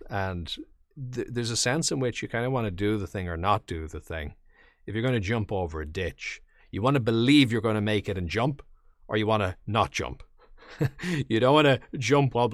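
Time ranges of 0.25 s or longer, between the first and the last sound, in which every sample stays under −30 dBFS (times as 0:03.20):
0:00.60–0:01.02
0:04.29–0:04.88
0:06.34–0:06.74
0:08.53–0:09.11
0:10.13–0:10.81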